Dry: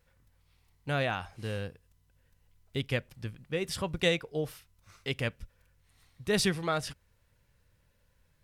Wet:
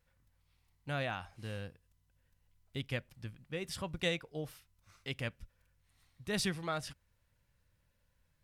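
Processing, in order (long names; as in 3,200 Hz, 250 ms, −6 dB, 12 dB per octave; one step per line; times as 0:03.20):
parametric band 430 Hz −5 dB 0.38 octaves
level −6 dB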